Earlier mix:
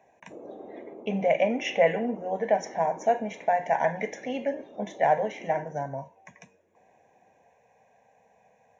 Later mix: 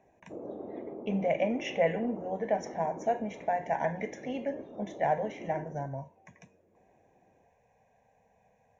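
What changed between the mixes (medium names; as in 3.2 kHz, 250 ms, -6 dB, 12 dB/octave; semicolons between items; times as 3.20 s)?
speech -6.5 dB; master: remove high-pass 300 Hz 6 dB/octave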